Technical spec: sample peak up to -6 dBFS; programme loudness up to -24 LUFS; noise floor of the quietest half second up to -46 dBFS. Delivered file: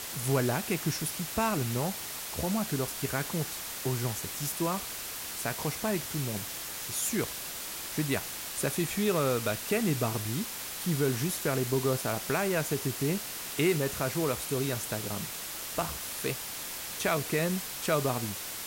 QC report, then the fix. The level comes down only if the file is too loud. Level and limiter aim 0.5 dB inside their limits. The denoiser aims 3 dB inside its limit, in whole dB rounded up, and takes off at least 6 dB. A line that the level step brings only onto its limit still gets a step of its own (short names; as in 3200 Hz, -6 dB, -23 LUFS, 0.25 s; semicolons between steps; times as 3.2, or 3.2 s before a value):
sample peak -15.5 dBFS: OK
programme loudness -31.0 LUFS: OK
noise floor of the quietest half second -39 dBFS: fail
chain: denoiser 10 dB, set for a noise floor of -39 dBFS